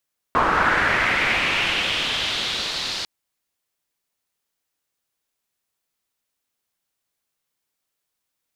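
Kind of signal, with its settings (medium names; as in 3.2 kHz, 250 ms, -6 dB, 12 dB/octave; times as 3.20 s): swept filtered noise white, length 2.70 s lowpass, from 1.1 kHz, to 4.4 kHz, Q 2.9, linear, gain ramp -15.5 dB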